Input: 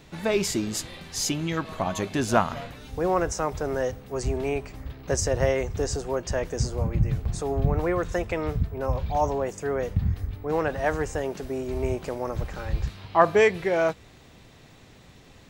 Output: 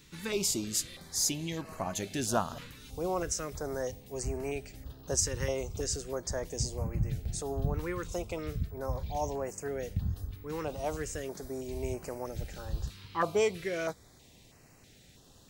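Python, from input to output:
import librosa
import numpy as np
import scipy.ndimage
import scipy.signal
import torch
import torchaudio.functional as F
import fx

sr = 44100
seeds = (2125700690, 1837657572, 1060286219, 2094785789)

y = fx.high_shelf(x, sr, hz=3900.0, db=11.5)
y = fx.filter_held_notch(y, sr, hz=3.1, low_hz=680.0, high_hz=3500.0)
y = y * 10.0 ** (-8.0 / 20.0)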